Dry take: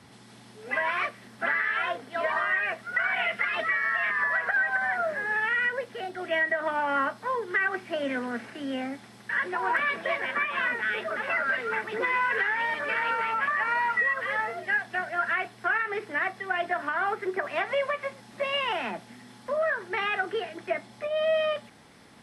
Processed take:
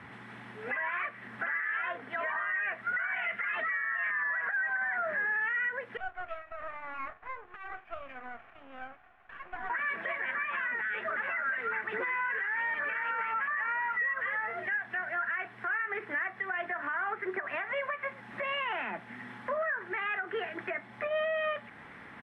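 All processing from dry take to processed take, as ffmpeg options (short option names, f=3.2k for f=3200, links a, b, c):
-filter_complex "[0:a]asettb=1/sr,asplit=3[a][b][c];[a]atrim=end=5.974[d];[b]atrim=start=5.97:end=9.7,asetpts=PTS-STARTPTS,afade=t=in:d=0.004:c=qsin,afade=t=out:st=3.726:d=0.004:c=qsin,acompressor=threshold=-28dB:ratio=5:attack=3.2:release=140:knee=1:detection=peak,asplit=3[e][f][g];[e]bandpass=f=730:t=q:w=8,volume=0dB[h];[f]bandpass=f=1.09k:t=q:w=8,volume=-6dB[i];[g]bandpass=f=2.44k:t=q:w=8,volume=-9dB[j];[h][i][j]amix=inputs=3:normalize=0,aeval=exprs='max(val(0),0)':c=same[k];[c]atrim=start=9.696[l];[d][k]acrossfade=d=0.004:c1=hsin:c2=qsin[m];[m][l]acrossfade=d=0.004:c1=qsin:c2=hsin,firequalizer=gain_entry='entry(610,0);entry(1000,5);entry(1800,10);entry(4600,-16)':delay=0.05:min_phase=1,alimiter=level_in=2.5dB:limit=-24dB:level=0:latency=1:release=301,volume=-2.5dB,volume=1.5dB"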